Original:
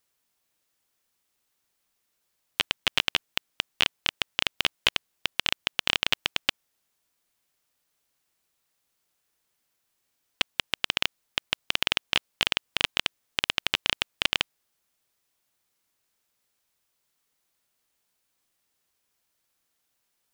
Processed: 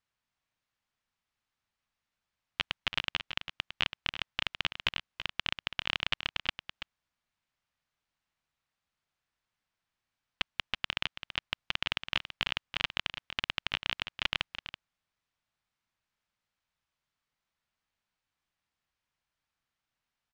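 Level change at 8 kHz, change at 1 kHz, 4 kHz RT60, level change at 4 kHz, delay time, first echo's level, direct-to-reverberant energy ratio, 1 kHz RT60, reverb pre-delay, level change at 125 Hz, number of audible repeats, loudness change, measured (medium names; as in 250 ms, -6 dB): -15.0 dB, -5.0 dB, no reverb, -7.5 dB, 331 ms, -10.5 dB, no reverb, no reverb, no reverb, -2.0 dB, 1, -7.0 dB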